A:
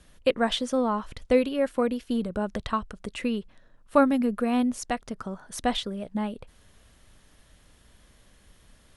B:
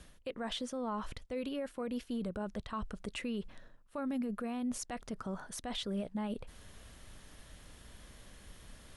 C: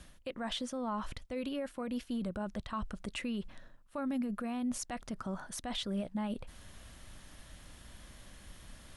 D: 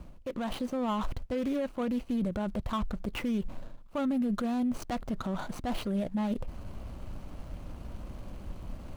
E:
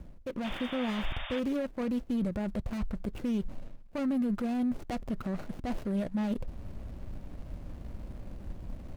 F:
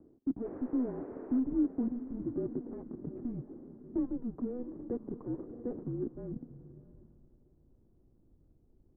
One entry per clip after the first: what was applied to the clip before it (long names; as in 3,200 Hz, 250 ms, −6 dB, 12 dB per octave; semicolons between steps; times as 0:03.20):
reversed playback; downward compressor 10 to 1, threshold −33 dBFS, peak gain reduction 19.5 dB; reversed playback; brickwall limiter −33 dBFS, peak gain reduction 10.5 dB; level +3 dB
parametric band 440 Hz −8 dB 0.25 octaves; level +1.5 dB
running median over 25 samples; brickwall limiter −37 dBFS, peak gain reduction 8.5 dB; automatic gain control gain up to 3.5 dB; level +9 dB
running median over 41 samples; sound drawn into the spectrogram noise, 0:00.44–0:01.40, 540–3,700 Hz −42 dBFS
feedback delay with all-pass diffusion 739 ms, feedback 42%, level −11.5 dB; low-pass filter sweep 570 Hz → 240 Hz, 0:05.80–0:07.46; single-sideband voice off tune −250 Hz 430–2,100 Hz